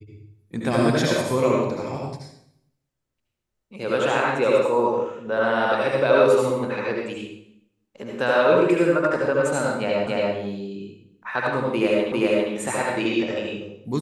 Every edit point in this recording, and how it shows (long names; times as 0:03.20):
0:10.07: the same again, the last 0.28 s
0:12.12: the same again, the last 0.4 s